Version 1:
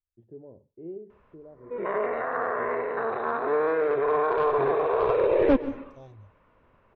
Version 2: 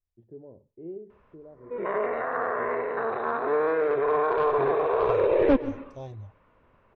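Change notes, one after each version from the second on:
second voice +8.5 dB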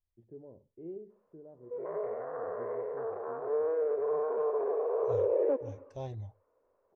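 first voice -4.0 dB; background: add ladder band-pass 550 Hz, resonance 50%

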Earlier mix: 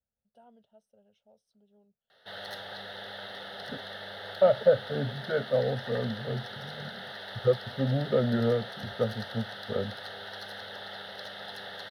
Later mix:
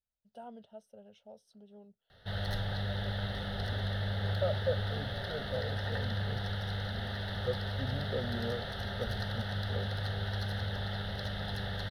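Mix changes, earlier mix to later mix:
first voice +10.0 dB; second voice -11.5 dB; background: remove HPF 400 Hz 12 dB/oct

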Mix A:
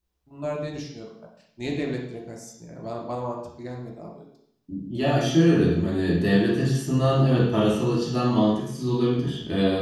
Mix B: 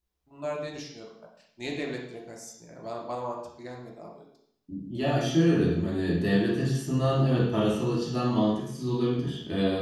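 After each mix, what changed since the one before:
first voice: add low shelf 330 Hz -11 dB; second voice -4.0 dB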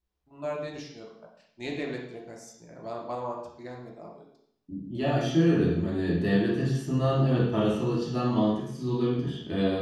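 master: add high shelf 5600 Hz -8.5 dB

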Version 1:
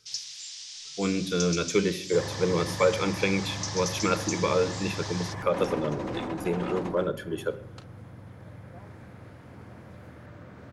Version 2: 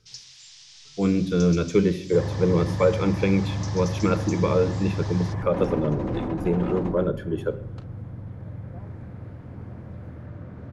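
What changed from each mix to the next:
master: add tilt -3 dB/oct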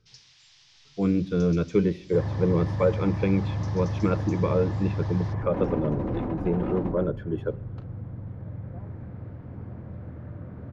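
speech: send -10.0 dB; master: add tape spacing loss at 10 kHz 20 dB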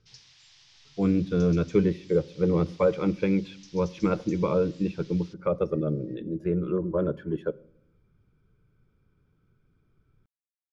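second sound: muted

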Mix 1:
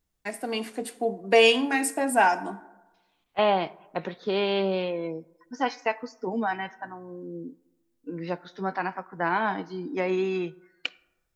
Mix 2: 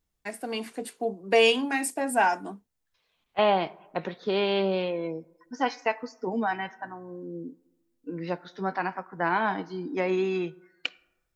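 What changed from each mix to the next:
first voice: send off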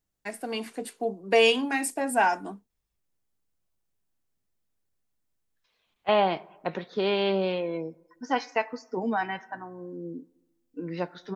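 second voice: entry +2.70 s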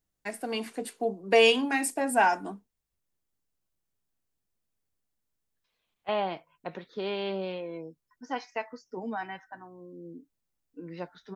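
second voice -6.0 dB; reverb: off

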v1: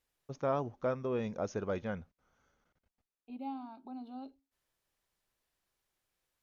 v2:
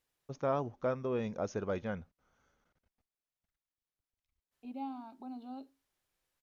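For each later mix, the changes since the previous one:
second voice: entry +1.35 s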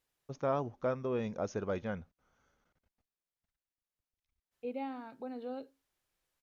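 second voice: remove fixed phaser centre 490 Hz, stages 6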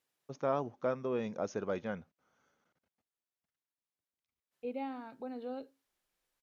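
first voice: add HPF 150 Hz 12 dB/oct

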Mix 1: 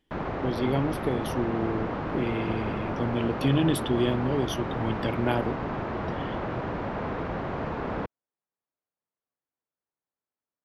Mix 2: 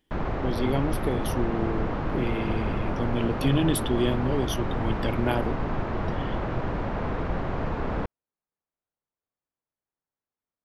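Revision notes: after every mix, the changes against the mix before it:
background: remove HPF 140 Hz 6 dB/oct; master: add high shelf 8200 Hz +8.5 dB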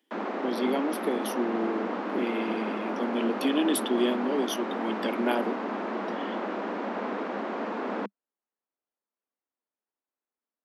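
master: add steep high-pass 200 Hz 96 dB/oct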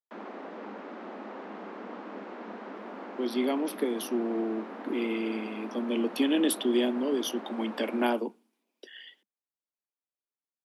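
speech: entry +2.75 s; background -9.5 dB

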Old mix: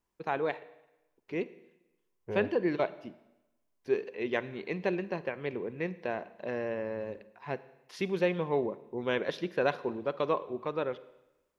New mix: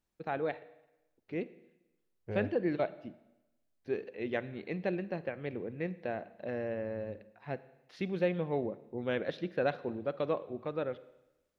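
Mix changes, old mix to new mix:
first voice: add LPF 1500 Hz 6 dB/oct; master: add thirty-one-band EQ 100 Hz +5 dB, 400 Hz -6 dB, 1000 Hz -11 dB, 4000 Hz +5 dB

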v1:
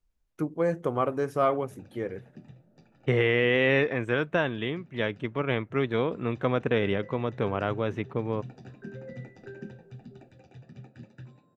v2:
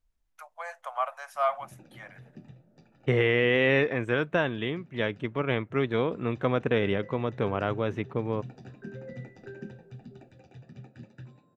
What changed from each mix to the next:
first voice: add steep high-pass 630 Hz 72 dB/oct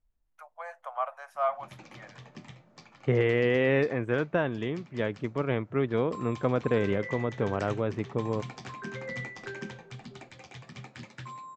background: remove running mean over 41 samples; master: add high shelf 2200 Hz -11.5 dB

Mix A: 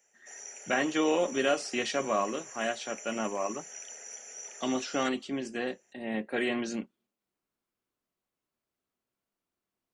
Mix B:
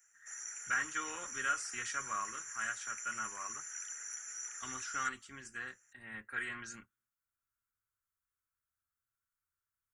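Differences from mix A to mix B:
background +5.0 dB; master: add EQ curve 110 Hz 0 dB, 160 Hz -19 dB, 280 Hz -23 dB, 410 Hz -23 dB, 640 Hz -28 dB, 1400 Hz +3 dB, 2700 Hz -13 dB, 4300 Hz -14 dB, 6800 Hz -2 dB, 13000 Hz +2 dB

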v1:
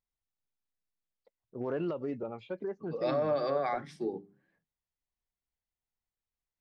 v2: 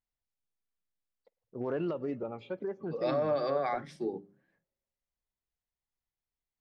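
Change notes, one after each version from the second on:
reverb: on, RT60 1.8 s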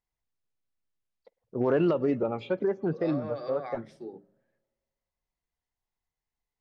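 first voice +9.0 dB; second voice -7.0 dB

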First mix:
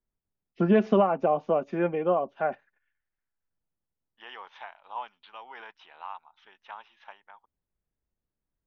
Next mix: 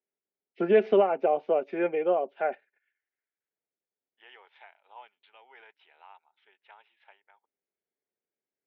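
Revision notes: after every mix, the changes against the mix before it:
second voice -9.0 dB; master: add speaker cabinet 380–4200 Hz, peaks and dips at 410 Hz +7 dB, 1100 Hz -10 dB, 2200 Hz +6 dB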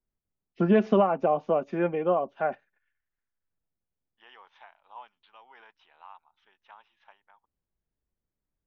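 master: remove speaker cabinet 380–4200 Hz, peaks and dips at 410 Hz +7 dB, 1100 Hz -10 dB, 2200 Hz +6 dB

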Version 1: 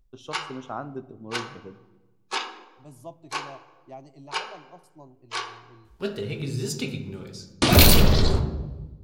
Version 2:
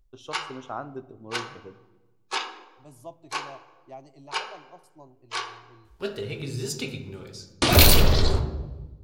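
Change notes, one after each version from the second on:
master: add bell 190 Hz -6.5 dB 1 oct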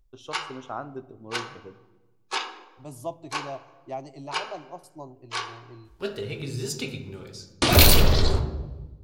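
second voice +8.5 dB

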